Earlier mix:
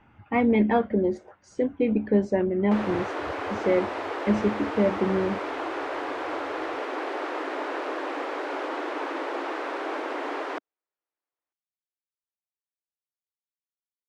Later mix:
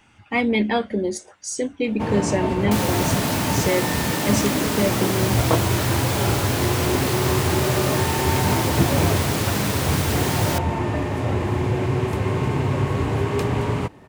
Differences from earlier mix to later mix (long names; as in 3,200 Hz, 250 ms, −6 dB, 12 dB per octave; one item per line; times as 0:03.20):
first sound: unmuted
master: remove low-pass filter 1,500 Hz 12 dB per octave